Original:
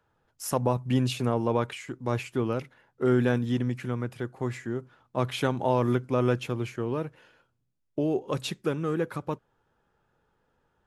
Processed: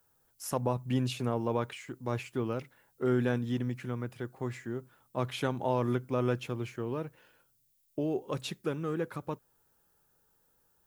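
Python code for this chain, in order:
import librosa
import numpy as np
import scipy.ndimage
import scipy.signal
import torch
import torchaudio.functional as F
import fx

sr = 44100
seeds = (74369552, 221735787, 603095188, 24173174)

y = fx.dmg_noise_colour(x, sr, seeds[0], colour='violet', level_db=-67.0)
y = y * librosa.db_to_amplitude(-5.0)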